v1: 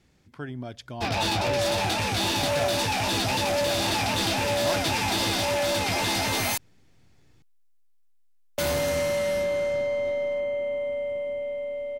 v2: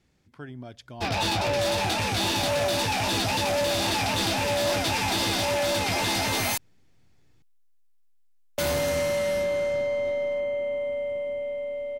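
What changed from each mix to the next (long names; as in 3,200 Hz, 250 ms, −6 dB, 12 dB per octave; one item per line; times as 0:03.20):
speech −4.5 dB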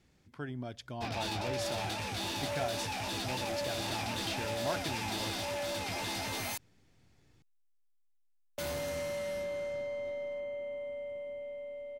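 background −11.0 dB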